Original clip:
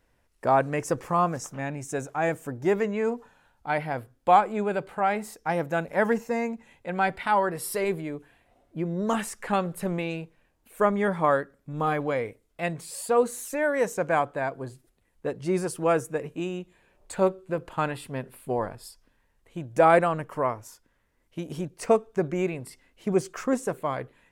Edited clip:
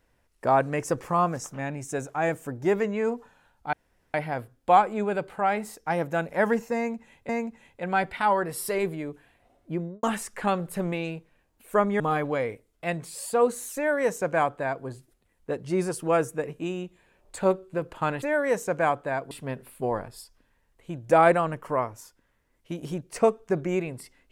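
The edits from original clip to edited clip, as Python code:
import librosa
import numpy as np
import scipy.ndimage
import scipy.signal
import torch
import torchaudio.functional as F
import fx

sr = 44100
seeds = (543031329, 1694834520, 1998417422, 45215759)

y = fx.studio_fade_out(x, sr, start_s=8.8, length_s=0.29)
y = fx.edit(y, sr, fx.insert_room_tone(at_s=3.73, length_s=0.41),
    fx.repeat(start_s=6.35, length_s=0.53, count=2),
    fx.cut(start_s=11.06, length_s=0.7),
    fx.duplicate(start_s=13.52, length_s=1.09, to_s=17.98), tone=tone)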